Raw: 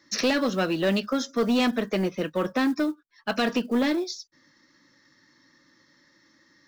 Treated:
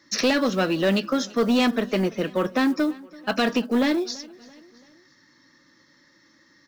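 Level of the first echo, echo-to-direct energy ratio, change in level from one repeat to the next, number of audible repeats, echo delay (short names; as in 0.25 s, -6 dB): -22.0 dB, -21.0 dB, -6.0 dB, 3, 0.335 s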